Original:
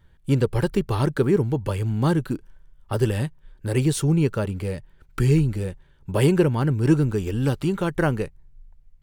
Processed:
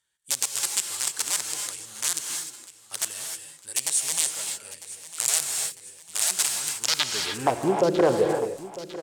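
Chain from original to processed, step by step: wrapped overs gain 13 dB; band-pass sweep 8000 Hz -> 540 Hz, 6.78–7.59; on a send: feedback echo 0.951 s, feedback 50%, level -16 dB; on the sum: non-linear reverb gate 0.33 s rising, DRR 3.5 dB; gain +9 dB

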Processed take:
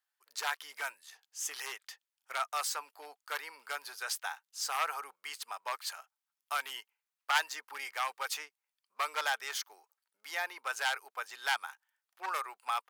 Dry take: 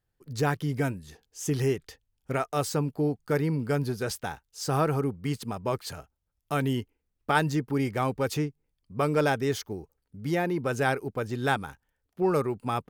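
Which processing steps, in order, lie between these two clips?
one-sided fold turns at -19 dBFS; HPF 910 Hz 24 dB/oct

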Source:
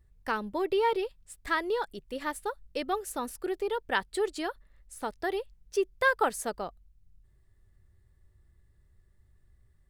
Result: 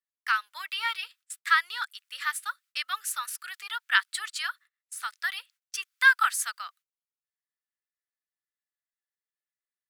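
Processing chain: gate -50 dBFS, range -26 dB; Chebyshev high-pass 1300 Hz, order 4; gain +9 dB

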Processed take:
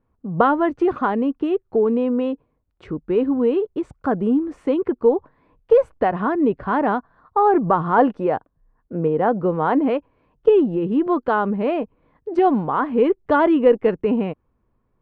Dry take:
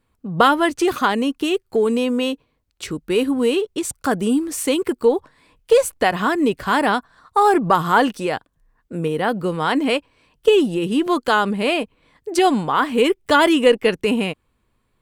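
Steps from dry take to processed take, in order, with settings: LPF 1100 Hz 12 dB/oct; 7.98–9.88 dynamic EQ 670 Hz, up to +4 dB, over -33 dBFS, Q 0.7

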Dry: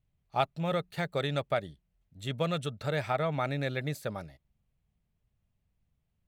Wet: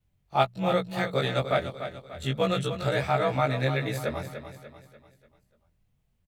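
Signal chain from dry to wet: short-time reversal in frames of 45 ms; notches 60/120/180 Hz; feedback echo 0.294 s, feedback 44%, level -10 dB; gain +8 dB

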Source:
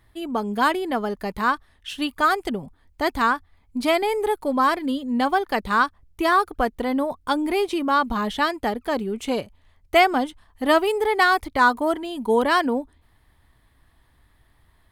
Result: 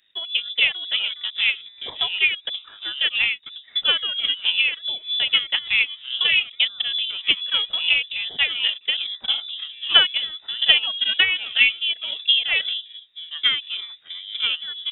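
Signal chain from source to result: echoes that change speed 0.163 s, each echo -5 st, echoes 3, each echo -6 dB; low shelf 120 Hz -10 dB; transient shaper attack +9 dB, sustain -6 dB; inverted band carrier 3700 Hz; high shelf 2000 Hz +8.5 dB; gain -9 dB

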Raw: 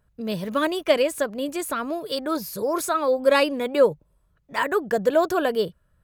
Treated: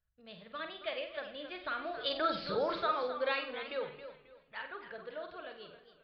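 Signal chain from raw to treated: Doppler pass-by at 2.42, 10 m/s, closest 1.7 m; steep low-pass 4300 Hz 72 dB/oct; bell 280 Hz -14.5 dB 2.4 oct; notch 1000 Hz, Q 7.7; de-hum 47.21 Hz, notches 9; compressor 1.5:1, threshold -42 dBFS, peak gain reduction 4.5 dB; flutter echo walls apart 8.1 m, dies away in 0.39 s; on a send at -20 dB: reverb RT60 1.1 s, pre-delay 93 ms; on the sum: warbling echo 0.269 s, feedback 31%, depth 123 cents, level -11.5 dB; gain +7.5 dB

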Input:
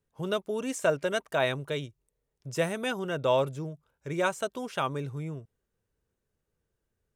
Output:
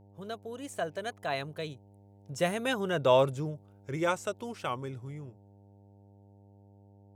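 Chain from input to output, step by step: Doppler pass-by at 3.16, 25 m/s, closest 20 m; buzz 100 Hz, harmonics 9, -59 dBFS -6 dB/oct; gain +2 dB

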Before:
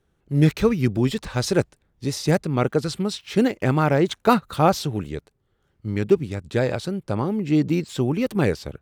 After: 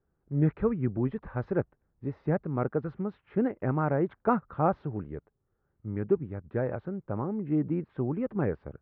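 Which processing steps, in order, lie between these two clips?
LPF 1600 Hz 24 dB/oct; gain -8 dB

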